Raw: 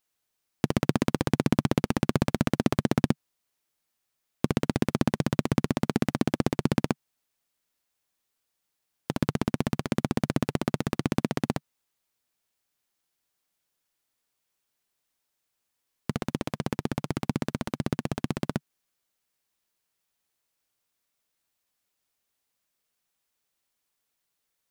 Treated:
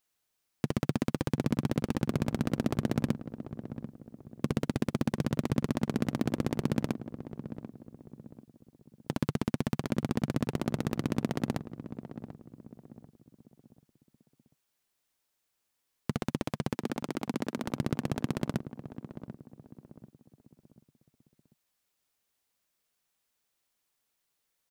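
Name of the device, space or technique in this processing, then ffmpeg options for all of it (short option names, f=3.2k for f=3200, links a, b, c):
soft clipper into limiter: -filter_complex "[0:a]asoftclip=type=tanh:threshold=-12dB,alimiter=limit=-16dB:level=0:latency=1:release=18,asettb=1/sr,asplit=3[a][b][c];[a]atrim=end=16.744[d];[b]atrim=start=16.74:end=17.65,asetpts=PTS-STARTPTS,afade=t=in:d=0.004:c=qsin,afade=t=out:st=0.906:d=0.004:c=qsin,highpass=f=210:w=0.5412,highpass=f=210:w=1.3066[e];[c]atrim=start=17.646[f];[d][e]acrossfade=d=0.004:c1=hsin:c2=qsin[g];[g][f]acrossfade=d=0.004:c1=qsin:c2=hsin,asplit=2[h][i];[i]adelay=740,lowpass=f=920:p=1,volume=-11dB,asplit=2[j][k];[k]adelay=740,lowpass=f=920:p=1,volume=0.41,asplit=2[l][m];[m]adelay=740,lowpass=f=920:p=1,volume=0.41,asplit=2[n][o];[o]adelay=740,lowpass=f=920:p=1,volume=0.41[p];[h][j][l][n][p]amix=inputs=5:normalize=0"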